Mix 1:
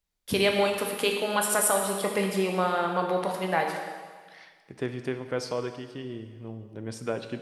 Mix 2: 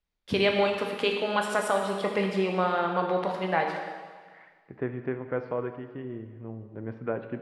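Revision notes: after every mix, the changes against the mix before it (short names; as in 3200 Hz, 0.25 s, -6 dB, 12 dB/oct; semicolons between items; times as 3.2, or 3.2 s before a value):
first voice: add LPF 4000 Hz 12 dB/oct; second voice: add LPF 2000 Hz 24 dB/oct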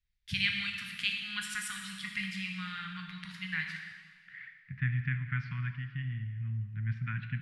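second voice +9.0 dB; master: add elliptic band-stop 150–1800 Hz, stop band 70 dB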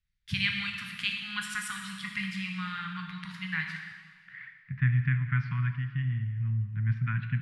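master: add ten-band EQ 125 Hz +6 dB, 250 Hz +3 dB, 1000 Hz +9 dB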